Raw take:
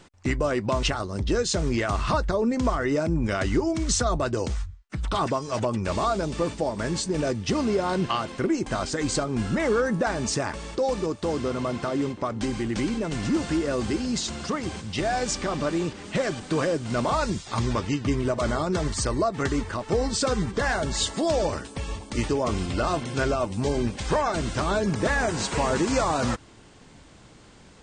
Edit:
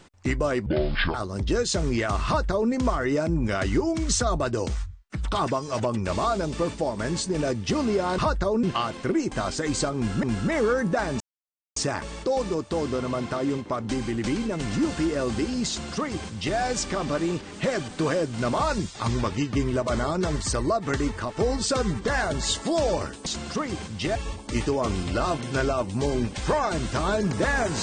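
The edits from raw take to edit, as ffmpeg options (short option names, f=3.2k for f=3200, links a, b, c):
-filter_complex "[0:a]asplit=9[a][b][c][d][e][f][g][h][i];[a]atrim=end=0.664[j];[b]atrim=start=0.66:end=0.94,asetpts=PTS-STARTPTS,asetrate=25578,aresample=44100[k];[c]atrim=start=0.936:end=7.982[l];[d]atrim=start=2.058:end=2.512[m];[e]atrim=start=7.978:end=9.582[n];[f]atrim=start=9.308:end=10.28,asetpts=PTS-STARTPTS,afade=t=out:st=0.968:d=0.004:c=hsin,apad=pad_dur=0.56[o];[g]atrim=start=10.28:end=21.782,asetpts=PTS-STARTPTS,afade=t=in:d=0.004:c=hsin[p];[h]atrim=start=14.198:end=15.092[q];[i]atrim=start=21.778[r];[j][k]acrossfade=d=0.004:c1=hsin:c2=hsin[s];[s][l]acrossfade=d=0.004:c1=hsin:c2=hsin[t];[t][m]acrossfade=d=0.004:c1=hsin:c2=hsin[u];[u][n]acrossfade=d=0.004:c1=hsin:c2=hsin[v];[o][p]concat=n=2:v=0:a=1[w];[v][w]acrossfade=d=0.004:c1=hsin:c2=hsin[x];[x][q]acrossfade=d=0.004:c1=hsin:c2=hsin[y];[y][r]acrossfade=d=0.004:c1=hsin:c2=hsin"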